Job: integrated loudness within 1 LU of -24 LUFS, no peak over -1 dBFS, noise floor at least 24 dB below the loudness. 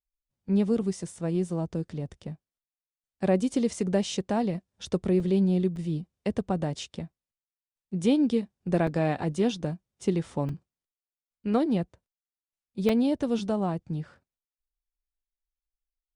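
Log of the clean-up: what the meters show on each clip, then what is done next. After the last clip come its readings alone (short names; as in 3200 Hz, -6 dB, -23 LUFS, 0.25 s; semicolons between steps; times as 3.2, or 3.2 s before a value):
dropouts 6; longest dropout 3.1 ms; loudness -28.0 LUFS; peak -11.0 dBFS; loudness target -24.0 LUFS
-> interpolate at 3.74/5.2/5.76/8.87/10.49/12.89, 3.1 ms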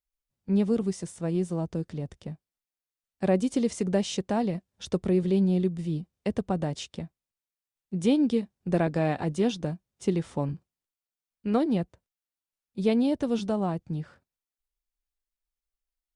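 dropouts 0; loudness -28.0 LUFS; peak -11.0 dBFS; loudness target -24.0 LUFS
-> gain +4 dB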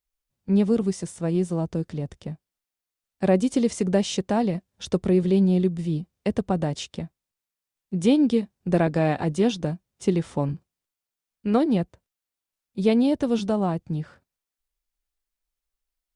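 loudness -24.0 LUFS; peak -7.0 dBFS; noise floor -89 dBFS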